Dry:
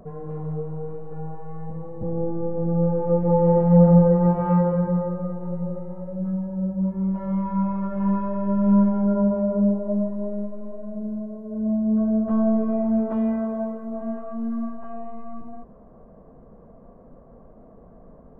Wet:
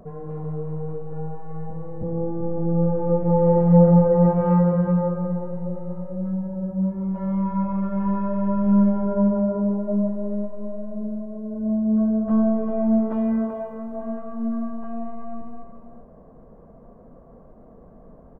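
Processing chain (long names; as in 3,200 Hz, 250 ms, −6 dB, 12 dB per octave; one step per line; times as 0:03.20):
single-tap delay 382 ms −8 dB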